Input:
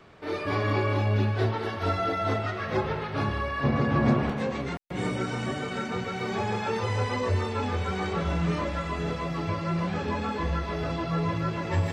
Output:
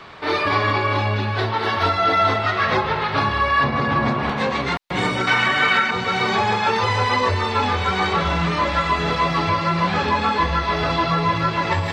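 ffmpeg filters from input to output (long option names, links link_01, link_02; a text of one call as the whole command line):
ffmpeg -i in.wav -filter_complex "[0:a]asettb=1/sr,asplit=3[link_01][link_02][link_03];[link_01]atrim=end=5.274[link_04];[link_02]atrim=start=5.27:end=5.91,asetpts=PTS-STARTPTS,afade=type=in:duration=0.004:curve=qsin,afade=type=out:start_time=0.636:duration=0.004:curve=qsin,equalizer=frequency=1900:width=0.67:gain=12.5[link_05];[link_03]atrim=start=5.906[link_06];[link_04][link_05]acrossfade=duration=0.004:curve1=hsin:curve2=qsin[link_07];[link_07][link_06]acrossfade=duration=0.004:curve1=qsin:curve2=hsin,alimiter=limit=-21dB:level=0:latency=1:release=355,equalizer=frequency=1000:width_type=o:width=1:gain=9,equalizer=frequency=2000:width_type=o:width=1:gain=5,equalizer=frequency=4000:width_type=o:width=1:gain=10,volume=6.5dB" out.wav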